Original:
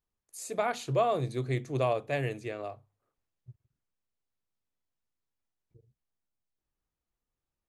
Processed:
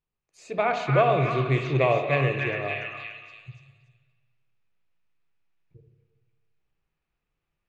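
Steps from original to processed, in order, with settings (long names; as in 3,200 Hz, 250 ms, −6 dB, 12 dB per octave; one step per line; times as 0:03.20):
thirty-one-band graphic EQ 160 Hz +7 dB, 250 Hz −4 dB, 2,500 Hz +8 dB, 10,000 Hz −6 dB
automatic gain control gain up to 6 dB
high-frequency loss of the air 150 metres
echo through a band-pass that steps 290 ms, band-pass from 1,600 Hz, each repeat 0.7 octaves, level 0 dB
convolution reverb RT60 1.5 s, pre-delay 58 ms, DRR 5.5 dB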